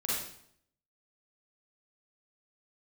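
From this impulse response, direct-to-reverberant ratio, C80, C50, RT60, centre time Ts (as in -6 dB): -7.5 dB, 3.0 dB, -2.0 dB, 0.65 s, 70 ms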